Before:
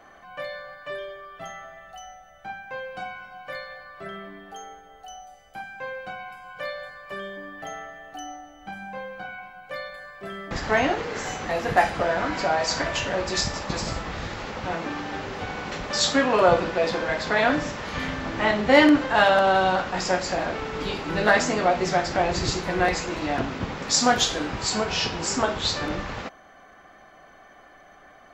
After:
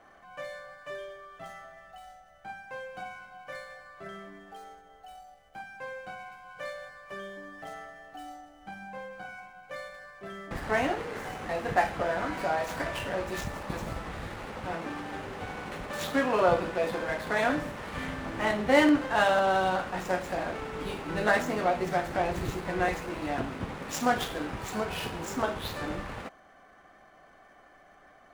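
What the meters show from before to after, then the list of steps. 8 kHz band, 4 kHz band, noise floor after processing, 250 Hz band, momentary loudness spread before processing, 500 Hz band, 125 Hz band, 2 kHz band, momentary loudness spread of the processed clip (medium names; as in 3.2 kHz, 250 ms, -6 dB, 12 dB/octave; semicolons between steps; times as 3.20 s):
-14.0 dB, -12.0 dB, -57 dBFS, -5.5 dB, 20 LU, -5.5 dB, -5.5 dB, -6.5 dB, 20 LU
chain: median filter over 9 samples; trim -5.5 dB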